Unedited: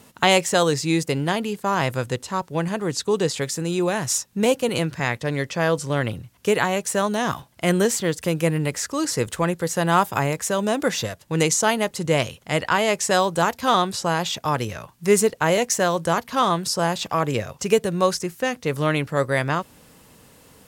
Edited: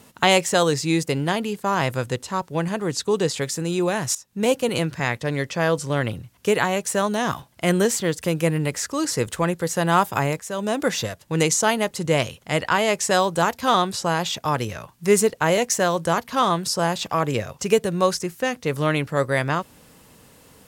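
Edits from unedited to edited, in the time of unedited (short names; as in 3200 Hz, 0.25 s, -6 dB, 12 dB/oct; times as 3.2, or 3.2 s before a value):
4.15–4.52 fade in, from -19 dB
10.4–10.93 fade in equal-power, from -13 dB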